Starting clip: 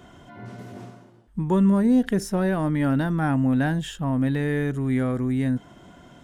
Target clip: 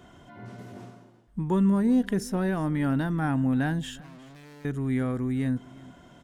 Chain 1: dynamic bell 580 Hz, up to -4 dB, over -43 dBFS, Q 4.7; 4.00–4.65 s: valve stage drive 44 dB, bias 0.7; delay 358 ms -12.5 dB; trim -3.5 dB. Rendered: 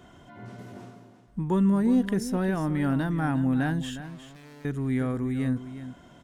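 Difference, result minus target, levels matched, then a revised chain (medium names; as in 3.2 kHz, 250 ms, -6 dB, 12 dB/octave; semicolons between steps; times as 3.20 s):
echo-to-direct +10 dB
dynamic bell 580 Hz, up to -4 dB, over -43 dBFS, Q 4.7; 4.00–4.65 s: valve stage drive 44 dB, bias 0.7; delay 358 ms -22.5 dB; trim -3.5 dB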